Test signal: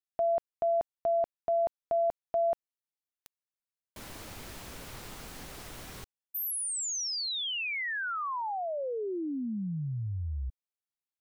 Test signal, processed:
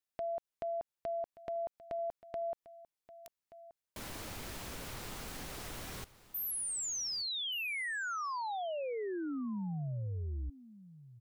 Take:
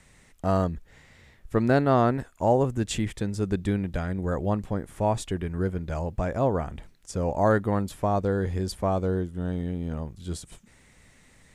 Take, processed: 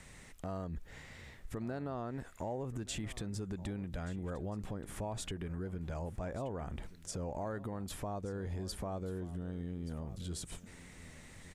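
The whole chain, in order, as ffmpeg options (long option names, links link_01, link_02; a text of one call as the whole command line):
ffmpeg -i in.wav -af "acompressor=threshold=-38dB:ratio=6:attack=1.7:release=79:knee=6:detection=rms,aecho=1:1:1178:0.133,volume=2dB" out.wav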